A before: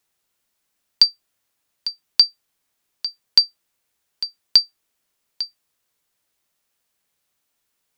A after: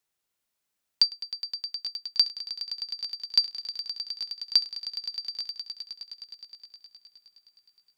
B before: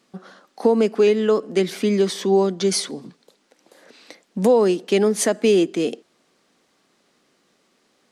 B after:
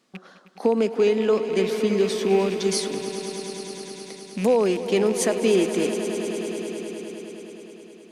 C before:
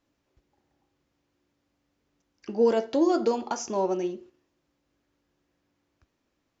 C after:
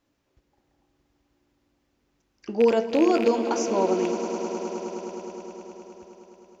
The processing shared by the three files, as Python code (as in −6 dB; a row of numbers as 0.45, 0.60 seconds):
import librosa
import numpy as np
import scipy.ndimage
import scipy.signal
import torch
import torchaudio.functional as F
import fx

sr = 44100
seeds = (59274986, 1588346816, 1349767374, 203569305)

y = fx.rattle_buzz(x, sr, strikes_db=-32.0, level_db=-23.0)
y = fx.echo_swell(y, sr, ms=104, loudest=5, wet_db=-14)
y = librosa.util.normalize(y) * 10.0 ** (-9 / 20.0)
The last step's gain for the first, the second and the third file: −8.0, −4.0, +2.0 decibels